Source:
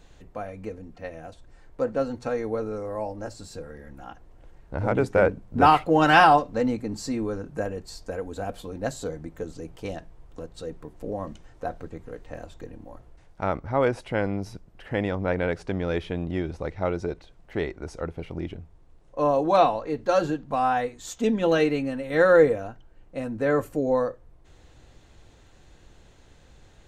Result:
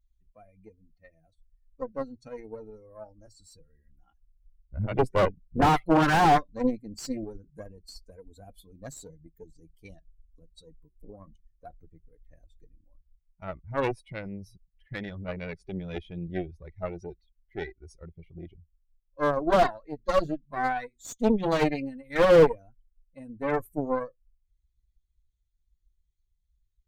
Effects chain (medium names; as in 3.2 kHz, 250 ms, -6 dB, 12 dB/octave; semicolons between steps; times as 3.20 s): expander on every frequency bin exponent 2; Chebyshev shaper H 3 -15 dB, 6 -17 dB, 8 -14 dB, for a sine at -7.5 dBFS; slew-rate limiter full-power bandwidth 48 Hz; trim +8 dB